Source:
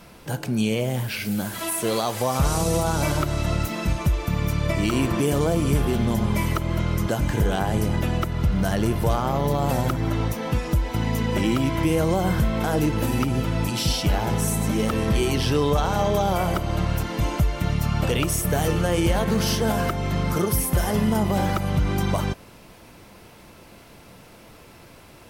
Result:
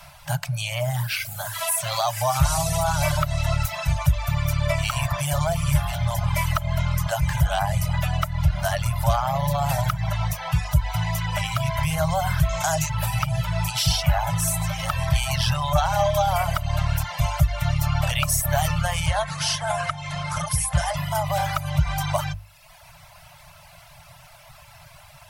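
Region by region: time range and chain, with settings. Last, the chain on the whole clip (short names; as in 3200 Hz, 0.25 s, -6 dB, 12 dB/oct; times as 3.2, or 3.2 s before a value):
12.49–12.9 bell 6800 Hz +15 dB 0.46 oct + notches 50/100/150/200/250/300/350 Hz
19.06–20.97 Chebyshev low-pass 11000 Hz, order 8 + notches 50/100/150/200/250/300/350 Hz
whole clip: reverb removal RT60 0.92 s; Chebyshev band-stop 160–590 Hz, order 5; notches 50/100 Hz; gain +4.5 dB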